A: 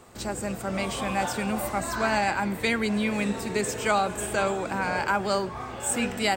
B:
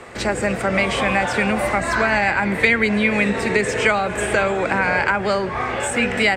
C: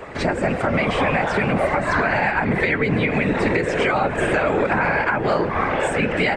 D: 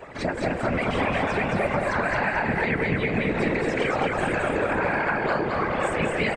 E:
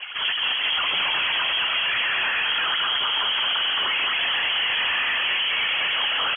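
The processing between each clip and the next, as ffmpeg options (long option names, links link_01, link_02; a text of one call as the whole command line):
ffmpeg -i in.wav -filter_complex "[0:a]lowpass=frequency=11000:width=0.5412,lowpass=frequency=11000:width=1.3066,acrossover=split=170[link_01][link_02];[link_02]acompressor=threshold=-30dB:ratio=6[link_03];[link_01][link_03]amix=inputs=2:normalize=0,equalizer=frequency=500:width_type=o:width=1:gain=6,equalizer=frequency=2000:width_type=o:width=1:gain=12,equalizer=frequency=8000:width_type=o:width=1:gain=-4,volume=8.5dB" out.wav
ffmpeg -i in.wav -af "aemphasis=mode=reproduction:type=75fm,afftfilt=real='hypot(re,im)*cos(2*PI*random(0))':imag='hypot(re,im)*sin(2*PI*random(1))':win_size=512:overlap=0.75,alimiter=limit=-18.5dB:level=0:latency=1:release=243,volume=9dB" out.wav
ffmpeg -i in.wav -filter_complex "[0:a]afftfilt=real='hypot(re,im)*cos(2*PI*random(0))':imag='hypot(re,im)*sin(2*PI*random(1))':win_size=512:overlap=0.75,asplit=2[link_01][link_02];[link_02]aecho=0:1:219|438|657|876|1095:0.708|0.283|0.113|0.0453|0.0181[link_03];[link_01][link_03]amix=inputs=2:normalize=0,volume=-2.5dB" out.wav
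ffmpeg -i in.wav -af "asoftclip=type=hard:threshold=-28.5dB,lowpass=frequency=2900:width_type=q:width=0.5098,lowpass=frequency=2900:width_type=q:width=0.6013,lowpass=frequency=2900:width_type=q:width=0.9,lowpass=frequency=2900:width_type=q:width=2.563,afreqshift=-3400,volume=7dB" out.wav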